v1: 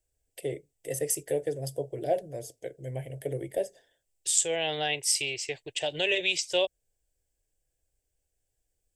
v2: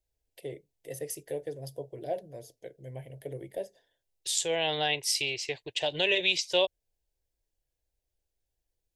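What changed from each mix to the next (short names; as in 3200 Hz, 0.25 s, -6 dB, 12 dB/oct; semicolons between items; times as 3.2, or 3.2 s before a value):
first voice -6.5 dB; master: add thirty-one-band EQ 200 Hz +5 dB, 1000 Hz +7 dB, 4000 Hz +6 dB, 8000 Hz -10 dB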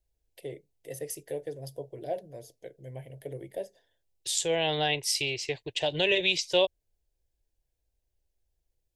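second voice: add low shelf 350 Hz +7 dB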